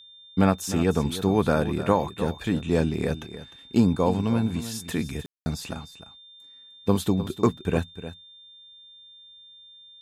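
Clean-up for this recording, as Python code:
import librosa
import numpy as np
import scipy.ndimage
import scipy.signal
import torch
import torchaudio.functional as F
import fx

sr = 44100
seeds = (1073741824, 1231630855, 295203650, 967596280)

y = fx.notch(x, sr, hz=3600.0, q=30.0)
y = fx.fix_ambience(y, sr, seeds[0], print_start_s=8.38, print_end_s=8.88, start_s=5.26, end_s=5.46)
y = fx.fix_echo_inverse(y, sr, delay_ms=304, level_db=-13.0)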